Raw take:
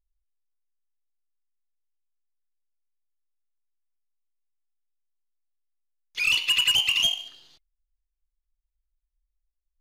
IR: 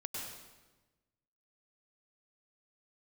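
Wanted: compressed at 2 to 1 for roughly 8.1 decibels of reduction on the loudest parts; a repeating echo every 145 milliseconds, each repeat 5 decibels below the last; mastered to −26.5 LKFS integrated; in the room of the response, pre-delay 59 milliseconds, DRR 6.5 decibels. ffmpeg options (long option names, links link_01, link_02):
-filter_complex "[0:a]acompressor=threshold=-34dB:ratio=2,aecho=1:1:145|290|435|580|725|870|1015:0.562|0.315|0.176|0.0988|0.0553|0.031|0.0173,asplit=2[link_01][link_02];[1:a]atrim=start_sample=2205,adelay=59[link_03];[link_02][link_03]afir=irnorm=-1:irlink=0,volume=-7dB[link_04];[link_01][link_04]amix=inputs=2:normalize=0,volume=1dB"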